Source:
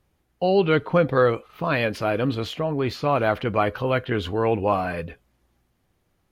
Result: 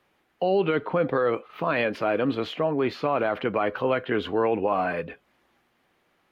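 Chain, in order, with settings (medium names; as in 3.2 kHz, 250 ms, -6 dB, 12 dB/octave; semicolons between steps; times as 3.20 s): three-band isolator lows -17 dB, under 180 Hz, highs -14 dB, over 3.4 kHz; peak limiter -15.5 dBFS, peak gain reduction 8.5 dB; tape noise reduction on one side only encoder only; trim +1.5 dB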